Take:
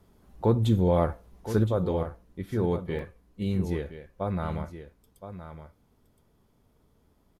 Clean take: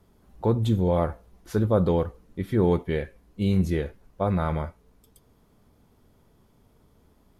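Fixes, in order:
repair the gap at 0:02.99, 1.2 ms
echo removal 1,018 ms −11.5 dB
level correction +5.5 dB, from 0:01.64

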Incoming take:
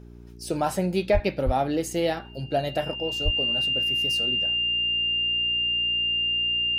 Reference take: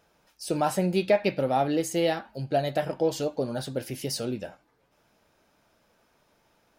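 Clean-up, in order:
hum removal 59.1 Hz, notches 7
notch filter 2,800 Hz, Q 30
high-pass at the plosives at 0:01.13/0:01.45/0:03.24
level 0 dB, from 0:02.95 +6 dB

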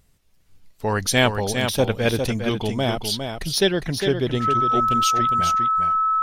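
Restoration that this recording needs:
notch filter 1,300 Hz, Q 30
echo removal 406 ms −6.5 dB

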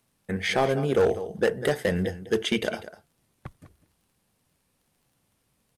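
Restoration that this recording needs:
clipped peaks rebuilt −15.5 dBFS
click removal
echo removal 197 ms −14.5 dB

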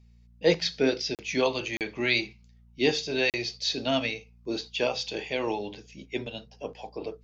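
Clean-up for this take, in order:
hum removal 58.5 Hz, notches 4
repair the gap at 0:01.15/0:01.77/0:03.30, 38 ms

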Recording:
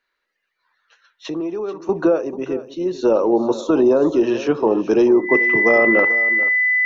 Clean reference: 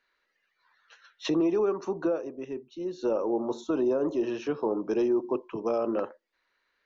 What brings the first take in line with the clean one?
notch filter 2,000 Hz, Q 30
echo removal 438 ms −14.5 dB
level correction −11.5 dB, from 0:01.89

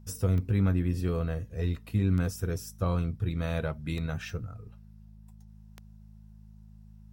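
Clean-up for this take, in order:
click removal
hum removal 53 Hz, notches 4

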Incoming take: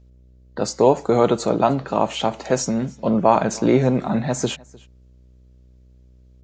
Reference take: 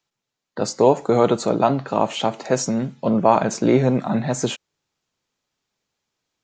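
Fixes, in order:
hum removal 62.4 Hz, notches 10
echo removal 304 ms −24 dB

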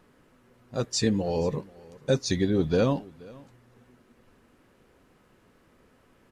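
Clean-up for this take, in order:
echo removal 478 ms −23 dB

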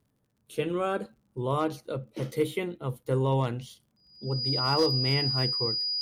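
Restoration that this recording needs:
clipped peaks rebuilt −16.5 dBFS
click removal
notch filter 4,900 Hz, Q 30

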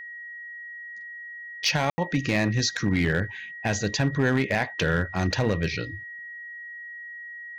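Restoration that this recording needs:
clipped peaks rebuilt −15 dBFS
notch filter 1,900 Hz, Q 30
ambience match 0:01.90–0:01.98

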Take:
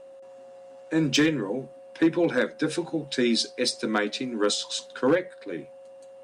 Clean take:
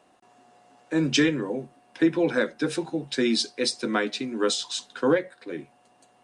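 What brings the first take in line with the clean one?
clipped peaks rebuilt −14 dBFS
notch filter 540 Hz, Q 30

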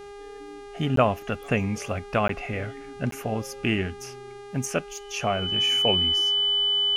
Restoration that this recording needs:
hum removal 405.7 Hz, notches 27
notch filter 3,000 Hz, Q 30
repair the gap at 0:00.96/0:02.28/0:03.11, 13 ms

